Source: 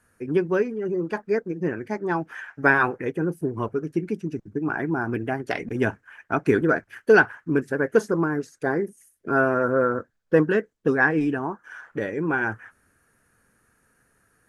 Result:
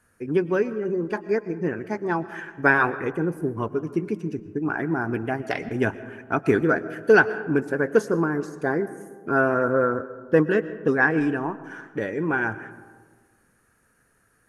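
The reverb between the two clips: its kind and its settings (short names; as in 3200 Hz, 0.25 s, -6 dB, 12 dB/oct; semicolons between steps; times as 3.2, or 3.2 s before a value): digital reverb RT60 1.5 s, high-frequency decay 0.35×, pre-delay 80 ms, DRR 14.5 dB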